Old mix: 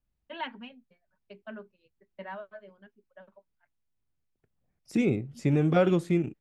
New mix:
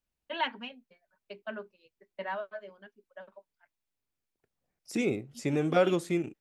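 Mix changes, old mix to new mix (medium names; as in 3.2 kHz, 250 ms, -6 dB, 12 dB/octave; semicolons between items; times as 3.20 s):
first voice +5.0 dB; master: add tone controls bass -10 dB, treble +6 dB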